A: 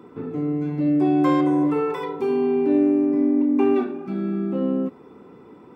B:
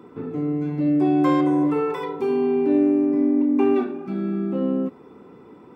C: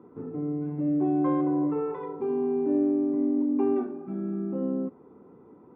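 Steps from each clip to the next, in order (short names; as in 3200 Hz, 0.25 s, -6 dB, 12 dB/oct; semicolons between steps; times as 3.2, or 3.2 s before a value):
nothing audible
LPF 1100 Hz 12 dB/oct; gain -6 dB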